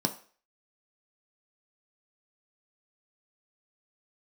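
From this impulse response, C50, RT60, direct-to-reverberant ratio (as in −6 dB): 13.5 dB, 0.45 s, 4.5 dB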